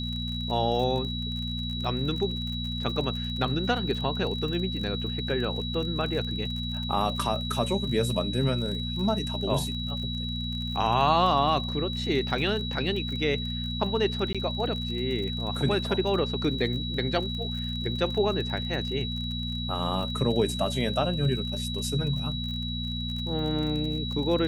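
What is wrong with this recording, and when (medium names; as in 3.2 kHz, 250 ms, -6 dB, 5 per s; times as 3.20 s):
crackle 35 per s -34 dBFS
hum 60 Hz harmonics 4 -33 dBFS
whine 3.9 kHz -34 dBFS
14.33–14.35 s: dropout 16 ms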